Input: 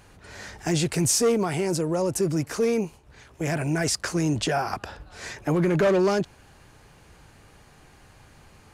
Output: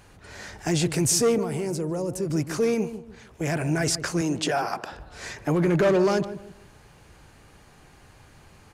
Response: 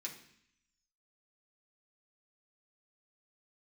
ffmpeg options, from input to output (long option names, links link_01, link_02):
-filter_complex "[0:a]asettb=1/sr,asplit=3[link_01][link_02][link_03];[link_01]atrim=end=1.384[link_04];[link_02]atrim=start=1.38:end=2.3,asetpts=PTS-STARTPTS,afade=type=in:duration=0.004:curve=qsin,afade=type=out:start_time=0.916:duration=0.004:curve=qsin,acrossover=split=550|7800[link_05][link_06][link_07];[link_05]acompressor=threshold=-26dB:ratio=4[link_08];[link_06]acompressor=threshold=-39dB:ratio=4[link_09];[link_07]acompressor=threshold=-42dB:ratio=4[link_10];[link_08][link_09][link_10]amix=inputs=3:normalize=0[link_11];[link_03]atrim=start=2.296[link_12];[link_04][link_11]acrossfade=duration=0.004:curve1=hsin:curve2=qsin[link_13];[link_13][link_12]acrossfade=duration=0.004:curve1=qsin:curve2=hsin,asettb=1/sr,asplit=3[link_14][link_15][link_16];[link_14]atrim=end=4.214[link_17];[link_15]atrim=start=4.21:end=4.93,asetpts=PTS-STARTPTS,afade=type=in:duration=0.004:curve=qsin,afade=type=out:start_time=0.716:duration=0.004:curve=qsin,highpass=210[link_18];[link_16]atrim=start=4.926[link_19];[link_17][link_18]acrossfade=duration=0.004:curve1=hsin:curve2=qsin[link_20];[link_20][link_19]acrossfade=duration=0.004:curve1=qsin:curve2=hsin,asplit=2[link_21][link_22];[link_22]adelay=148,lowpass=frequency=870:poles=1,volume=-10.5dB,asplit=2[link_23][link_24];[link_24]adelay=148,lowpass=frequency=870:poles=1,volume=0.35,asplit=2[link_25][link_26];[link_26]adelay=148,lowpass=frequency=870:poles=1,volume=0.35,asplit=2[link_27][link_28];[link_28]adelay=148,lowpass=frequency=870:poles=1,volume=0.35[link_29];[link_21][link_23][link_25][link_27][link_29]amix=inputs=5:normalize=0"